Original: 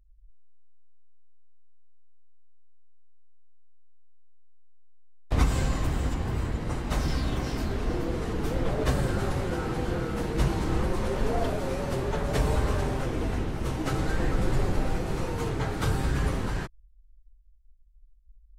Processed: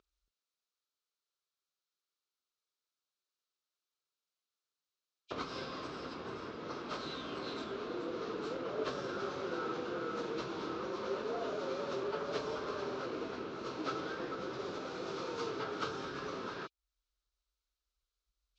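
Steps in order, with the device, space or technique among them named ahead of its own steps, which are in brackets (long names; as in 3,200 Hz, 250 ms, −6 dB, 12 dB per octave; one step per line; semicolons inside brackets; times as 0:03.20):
hearing aid with frequency lowering (hearing-aid frequency compression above 2,300 Hz 1.5 to 1; downward compressor 2 to 1, threshold −47 dBFS, peak gain reduction 16 dB; loudspeaker in its box 330–6,300 Hz, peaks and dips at 410 Hz +4 dB, 790 Hz −7 dB, 1,300 Hz +7 dB, 1,900 Hz −8 dB, 4,000 Hz +5 dB)
0:14.59–0:15.64: high-shelf EQ 4,500 Hz +6 dB
level +5.5 dB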